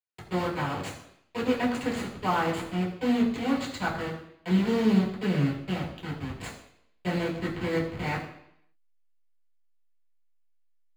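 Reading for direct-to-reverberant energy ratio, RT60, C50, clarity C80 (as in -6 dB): -5.5 dB, 0.70 s, 7.0 dB, 9.0 dB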